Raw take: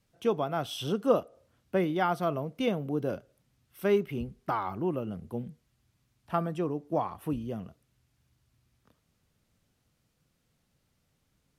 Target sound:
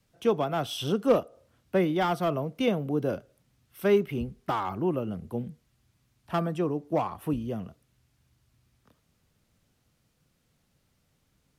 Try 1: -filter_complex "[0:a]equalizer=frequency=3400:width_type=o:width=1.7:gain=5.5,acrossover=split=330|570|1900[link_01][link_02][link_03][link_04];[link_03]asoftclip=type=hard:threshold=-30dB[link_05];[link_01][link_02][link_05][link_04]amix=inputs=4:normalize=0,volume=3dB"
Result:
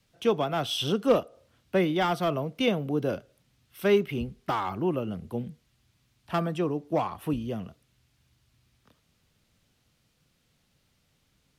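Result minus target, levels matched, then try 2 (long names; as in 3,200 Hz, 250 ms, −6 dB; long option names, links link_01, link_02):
4,000 Hz band +4.5 dB
-filter_complex "[0:a]acrossover=split=330|570|1900[link_01][link_02][link_03][link_04];[link_03]asoftclip=type=hard:threshold=-30dB[link_05];[link_01][link_02][link_05][link_04]amix=inputs=4:normalize=0,volume=3dB"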